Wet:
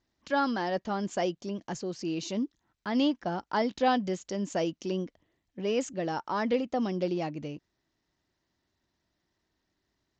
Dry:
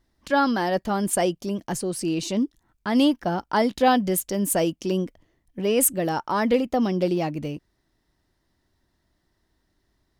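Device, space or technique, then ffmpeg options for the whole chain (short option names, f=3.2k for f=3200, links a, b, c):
Bluetooth headset: -af "highpass=f=110:p=1,aresample=16000,aresample=44100,volume=-6.5dB" -ar 16000 -c:a sbc -b:a 64k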